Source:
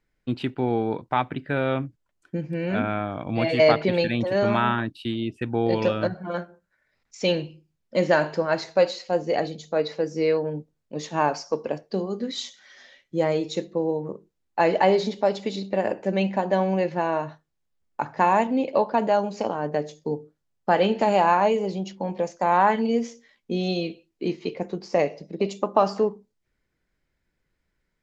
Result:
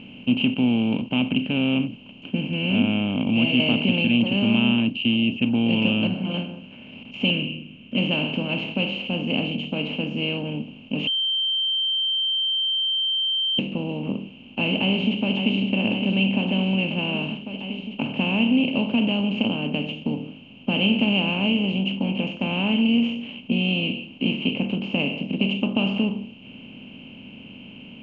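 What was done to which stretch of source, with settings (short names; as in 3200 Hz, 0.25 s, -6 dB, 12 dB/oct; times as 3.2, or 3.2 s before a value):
7.3–7.98 fixed phaser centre 2000 Hz, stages 4
11.07–13.59 bleep 3130 Hz -20 dBFS
14.73–15.56 echo throw 0.56 s, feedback 65%, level -14.5 dB
whole clip: per-bin compression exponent 0.4; EQ curve 150 Hz 0 dB, 250 Hz +8 dB, 370 Hz -11 dB, 810 Hz -16 dB, 1900 Hz -23 dB, 2800 Hz +14 dB, 4000 Hz -23 dB, 8300 Hz -28 dB; gain -3 dB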